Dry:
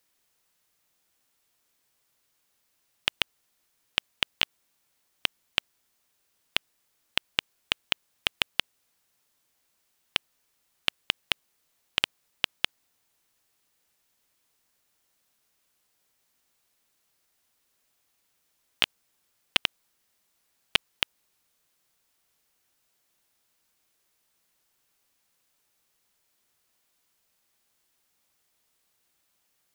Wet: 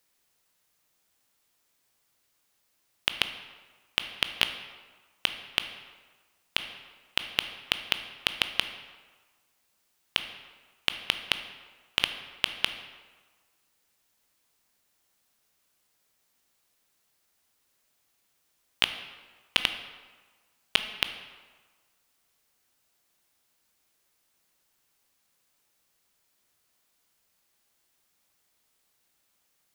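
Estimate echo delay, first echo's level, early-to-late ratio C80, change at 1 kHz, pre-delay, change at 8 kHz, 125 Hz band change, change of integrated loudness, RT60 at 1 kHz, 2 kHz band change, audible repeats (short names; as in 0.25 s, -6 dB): none, none, 11.0 dB, +0.5 dB, 15 ms, +0.5 dB, +0.5 dB, 0.0 dB, 1.5 s, +0.5 dB, none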